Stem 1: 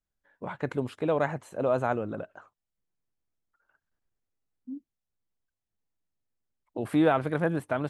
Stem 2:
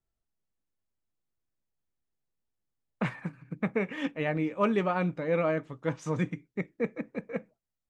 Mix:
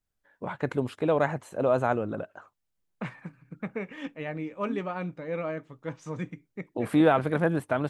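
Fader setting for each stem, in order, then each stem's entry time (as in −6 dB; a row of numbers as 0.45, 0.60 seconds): +2.0, −5.0 decibels; 0.00, 0.00 seconds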